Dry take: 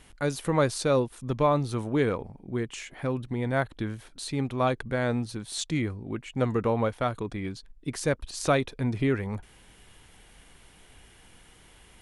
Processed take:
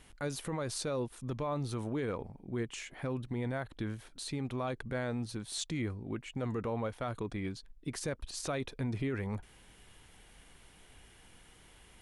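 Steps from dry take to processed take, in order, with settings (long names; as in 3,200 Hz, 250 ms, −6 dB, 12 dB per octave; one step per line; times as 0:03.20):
brickwall limiter −23 dBFS, peak gain reduction 11.5 dB
level −4 dB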